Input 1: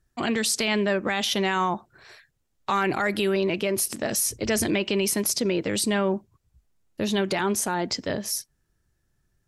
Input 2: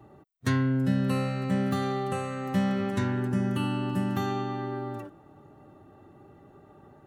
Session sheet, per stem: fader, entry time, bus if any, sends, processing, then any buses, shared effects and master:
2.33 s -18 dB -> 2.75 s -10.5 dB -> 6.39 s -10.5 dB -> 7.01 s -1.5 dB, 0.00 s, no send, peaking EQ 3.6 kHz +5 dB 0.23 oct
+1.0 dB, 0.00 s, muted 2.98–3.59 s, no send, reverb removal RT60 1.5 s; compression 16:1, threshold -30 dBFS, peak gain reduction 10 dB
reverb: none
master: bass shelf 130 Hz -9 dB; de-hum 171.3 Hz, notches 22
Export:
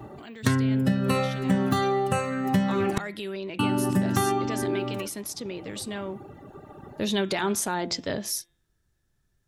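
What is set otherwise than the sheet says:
stem 2 +1.0 dB -> +11.5 dB; master: missing bass shelf 130 Hz -9 dB

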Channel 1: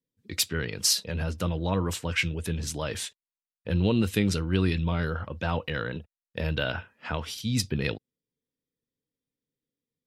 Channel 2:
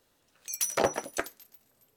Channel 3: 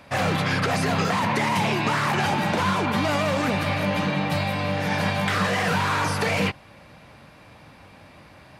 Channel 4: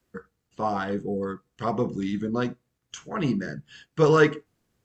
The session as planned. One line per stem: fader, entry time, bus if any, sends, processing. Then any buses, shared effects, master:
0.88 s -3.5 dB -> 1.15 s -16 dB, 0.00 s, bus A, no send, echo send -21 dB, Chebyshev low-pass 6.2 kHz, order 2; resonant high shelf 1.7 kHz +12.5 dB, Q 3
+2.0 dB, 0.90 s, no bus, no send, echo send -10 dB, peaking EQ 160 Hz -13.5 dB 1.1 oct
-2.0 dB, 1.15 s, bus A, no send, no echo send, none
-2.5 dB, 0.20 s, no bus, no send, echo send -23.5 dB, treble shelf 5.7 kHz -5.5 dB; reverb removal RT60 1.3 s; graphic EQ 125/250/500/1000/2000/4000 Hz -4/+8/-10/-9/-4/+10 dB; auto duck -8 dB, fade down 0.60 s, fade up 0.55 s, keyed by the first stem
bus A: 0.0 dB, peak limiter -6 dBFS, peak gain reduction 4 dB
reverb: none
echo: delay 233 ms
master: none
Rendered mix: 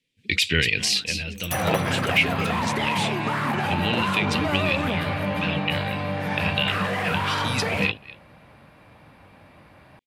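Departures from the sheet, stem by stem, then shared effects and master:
stem 1 -3.5 dB -> +8.5 dB; stem 3: entry 1.15 s -> 1.40 s; master: extra peaking EQ 6 kHz -9.5 dB 1.2 oct

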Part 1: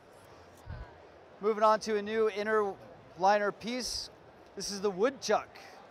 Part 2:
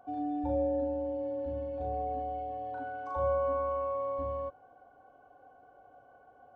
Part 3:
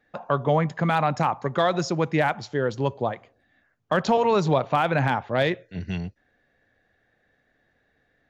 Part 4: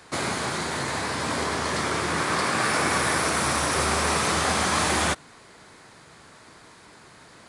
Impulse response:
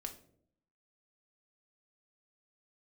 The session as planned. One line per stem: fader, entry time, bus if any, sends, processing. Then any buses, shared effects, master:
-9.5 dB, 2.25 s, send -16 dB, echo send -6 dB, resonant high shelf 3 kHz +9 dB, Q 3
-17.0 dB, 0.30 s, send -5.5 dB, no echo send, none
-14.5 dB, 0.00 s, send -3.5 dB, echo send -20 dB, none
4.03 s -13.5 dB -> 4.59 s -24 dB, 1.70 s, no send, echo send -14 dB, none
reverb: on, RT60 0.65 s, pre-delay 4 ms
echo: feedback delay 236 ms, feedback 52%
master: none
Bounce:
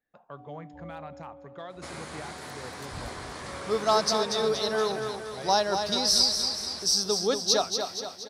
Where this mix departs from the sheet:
stem 1 -9.5 dB -> +1.5 dB; stem 3 -14.5 dB -> -22.0 dB; reverb return -6.5 dB

